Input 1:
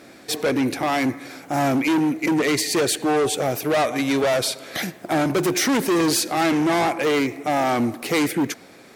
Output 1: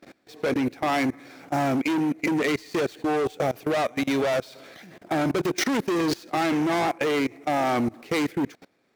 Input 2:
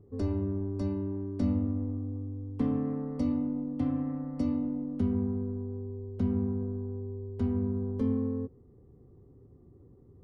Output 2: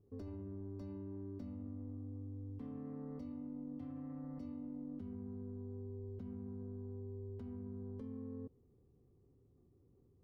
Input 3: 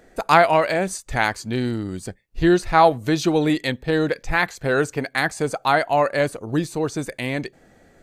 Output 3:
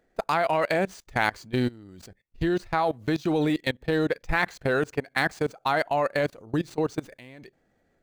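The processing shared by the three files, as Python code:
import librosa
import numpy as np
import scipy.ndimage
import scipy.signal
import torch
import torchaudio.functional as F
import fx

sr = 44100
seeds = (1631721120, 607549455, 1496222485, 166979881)

y = scipy.signal.medfilt(x, 5)
y = fx.level_steps(y, sr, step_db=23)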